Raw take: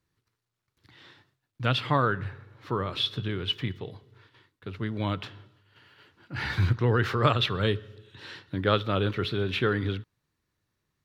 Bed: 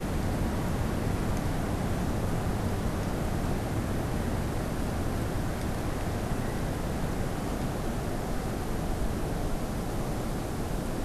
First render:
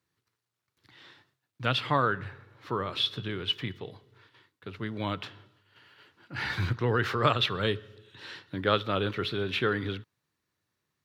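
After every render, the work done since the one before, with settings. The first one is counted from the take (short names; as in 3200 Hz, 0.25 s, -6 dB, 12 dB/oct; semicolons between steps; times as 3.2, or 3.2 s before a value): HPF 88 Hz; low shelf 340 Hz -4.5 dB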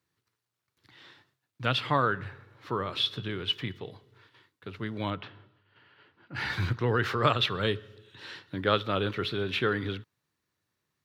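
5.1–6.35 air absorption 250 m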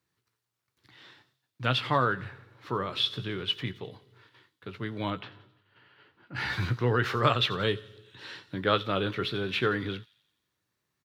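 doubler 16 ms -11 dB; thin delay 87 ms, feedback 55%, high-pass 5100 Hz, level -11.5 dB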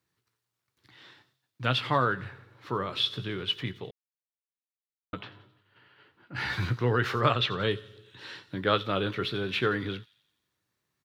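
3.91–5.13 mute; 7.21–7.71 air absorption 59 m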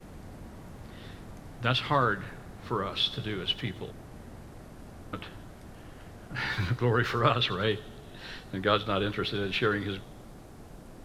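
add bed -16 dB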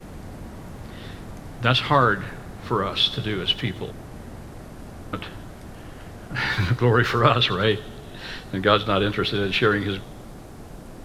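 gain +7.5 dB; limiter -3 dBFS, peak gain reduction 1.5 dB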